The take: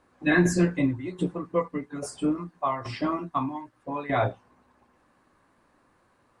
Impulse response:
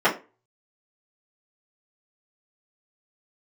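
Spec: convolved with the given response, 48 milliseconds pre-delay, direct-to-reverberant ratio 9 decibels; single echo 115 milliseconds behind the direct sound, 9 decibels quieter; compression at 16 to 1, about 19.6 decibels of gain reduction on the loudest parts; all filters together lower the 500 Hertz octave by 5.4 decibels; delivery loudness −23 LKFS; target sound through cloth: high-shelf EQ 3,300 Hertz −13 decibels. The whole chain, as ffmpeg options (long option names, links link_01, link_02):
-filter_complex "[0:a]equalizer=frequency=500:width_type=o:gain=-7.5,acompressor=threshold=-38dB:ratio=16,aecho=1:1:115:0.355,asplit=2[link_01][link_02];[1:a]atrim=start_sample=2205,adelay=48[link_03];[link_02][link_03]afir=irnorm=-1:irlink=0,volume=-28.5dB[link_04];[link_01][link_04]amix=inputs=2:normalize=0,highshelf=frequency=3300:gain=-13,volume=20dB"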